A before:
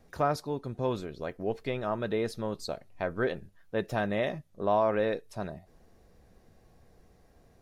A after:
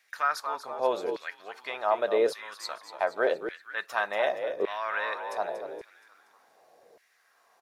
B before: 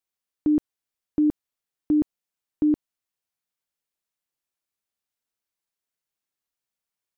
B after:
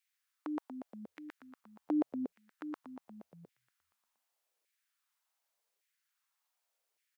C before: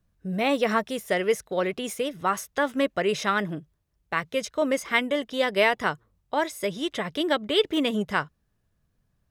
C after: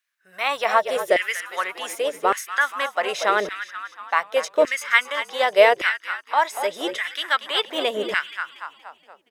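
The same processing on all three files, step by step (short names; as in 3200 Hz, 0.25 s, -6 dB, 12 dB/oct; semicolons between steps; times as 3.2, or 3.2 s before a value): frequency-shifting echo 0.236 s, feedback 52%, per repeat -44 Hz, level -10.5 dB; LFO high-pass saw down 0.86 Hz 430–2100 Hz; gain +2.5 dB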